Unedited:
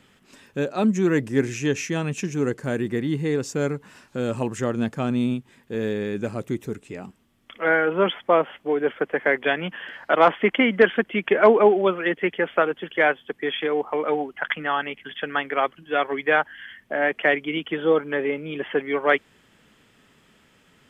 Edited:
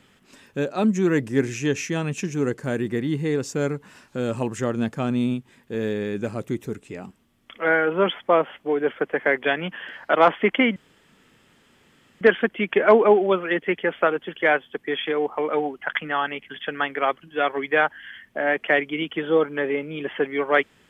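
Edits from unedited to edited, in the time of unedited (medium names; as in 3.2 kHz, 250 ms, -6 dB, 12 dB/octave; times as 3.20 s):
10.76 s: insert room tone 1.45 s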